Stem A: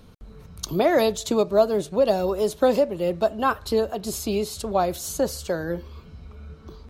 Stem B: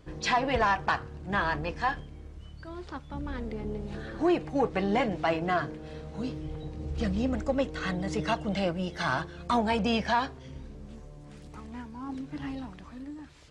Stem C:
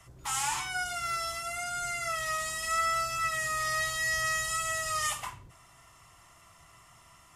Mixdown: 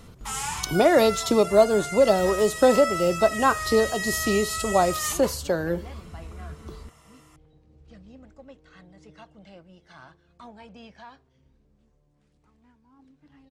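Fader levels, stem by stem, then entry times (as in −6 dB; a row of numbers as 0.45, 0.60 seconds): +1.5, −19.5, 0.0 decibels; 0.00, 0.90, 0.00 seconds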